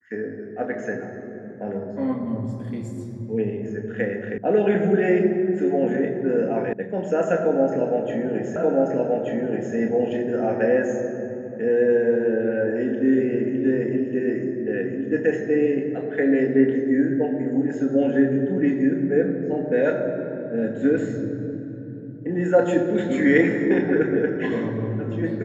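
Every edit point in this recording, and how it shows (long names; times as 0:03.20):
0:04.38: cut off before it has died away
0:06.73: cut off before it has died away
0:08.56: the same again, the last 1.18 s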